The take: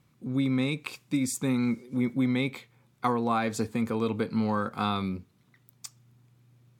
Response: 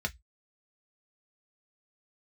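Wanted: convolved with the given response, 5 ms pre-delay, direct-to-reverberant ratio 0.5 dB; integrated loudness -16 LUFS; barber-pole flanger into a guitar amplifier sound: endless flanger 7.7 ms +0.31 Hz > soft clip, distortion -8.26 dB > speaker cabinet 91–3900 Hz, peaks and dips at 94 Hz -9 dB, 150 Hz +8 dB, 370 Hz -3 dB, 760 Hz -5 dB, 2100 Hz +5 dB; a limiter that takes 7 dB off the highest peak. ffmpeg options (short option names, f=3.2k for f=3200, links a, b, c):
-filter_complex "[0:a]alimiter=limit=-19dB:level=0:latency=1,asplit=2[a][b];[1:a]atrim=start_sample=2205,adelay=5[c];[b][c]afir=irnorm=-1:irlink=0,volume=-5dB[d];[a][d]amix=inputs=2:normalize=0,asplit=2[e][f];[f]adelay=7.7,afreqshift=0.31[g];[e][g]amix=inputs=2:normalize=1,asoftclip=threshold=-27dB,highpass=91,equalizer=f=94:t=q:w=4:g=-9,equalizer=f=150:t=q:w=4:g=8,equalizer=f=370:t=q:w=4:g=-3,equalizer=f=760:t=q:w=4:g=-5,equalizer=f=2.1k:t=q:w=4:g=5,lowpass=f=3.9k:w=0.5412,lowpass=f=3.9k:w=1.3066,volume=18dB"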